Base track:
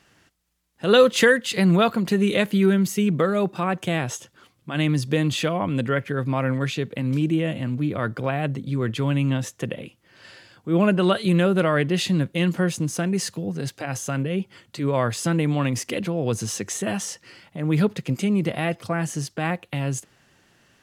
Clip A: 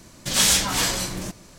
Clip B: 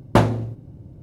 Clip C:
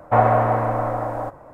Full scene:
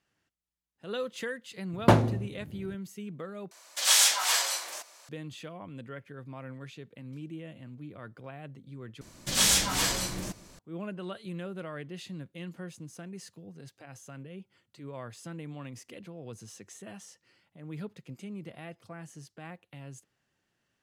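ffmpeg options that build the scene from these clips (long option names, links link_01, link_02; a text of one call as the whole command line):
ffmpeg -i bed.wav -i cue0.wav -i cue1.wav -filter_complex "[1:a]asplit=2[link_01][link_02];[0:a]volume=-19.5dB[link_03];[2:a]highpass=75[link_04];[link_01]highpass=frequency=630:width=0.5412,highpass=frequency=630:width=1.3066[link_05];[link_03]asplit=3[link_06][link_07][link_08];[link_06]atrim=end=3.514[link_09];[link_05]atrim=end=1.58,asetpts=PTS-STARTPTS,volume=-3dB[link_10];[link_07]atrim=start=5.086:end=9.014[link_11];[link_02]atrim=end=1.58,asetpts=PTS-STARTPTS,volume=-5dB[link_12];[link_08]atrim=start=10.586[link_13];[link_04]atrim=end=1.02,asetpts=PTS-STARTPTS,volume=-3.5dB,afade=type=in:duration=0.004:curve=hsin,afade=type=out:start_time=1.016:duration=0.004:curve=hsin,adelay=1730[link_14];[link_09][link_10]acrossfade=duration=0.004:curve1=hsin:curve2=hsin[link_15];[link_15][link_11]acrossfade=duration=0.004:curve1=hsin:curve2=hsin[link_16];[link_16][link_12]acrossfade=duration=0.004:curve1=hsin:curve2=hsin[link_17];[link_17][link_13]acrossfade=duration=0.004:curve1=hsin:curve2=hsin[link_18];[link_18][link_14]amix=inputs=2:normalize=0" out.wav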